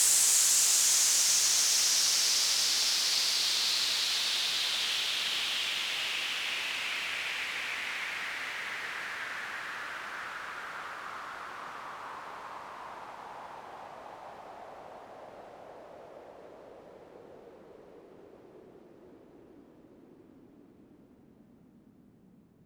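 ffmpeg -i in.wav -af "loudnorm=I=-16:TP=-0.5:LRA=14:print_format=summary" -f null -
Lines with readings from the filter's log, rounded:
Input Integrated:    -27.1 LUFS
Input True Peak:     -11.0 dBTP
Input LRA:            22.5 LU
Input Threshold:     -40.6 LUFS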